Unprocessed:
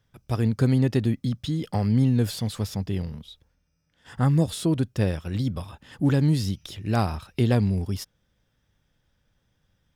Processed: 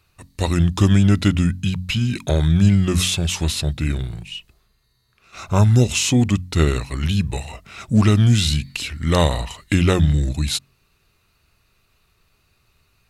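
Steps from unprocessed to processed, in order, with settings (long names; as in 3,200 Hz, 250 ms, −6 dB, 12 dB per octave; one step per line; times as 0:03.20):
high-shelf EQ 2,500 Hz +9 dB
mains-hum notches 60/120/180/240/300/360 Hz
speed change −24%
level +6.5 dB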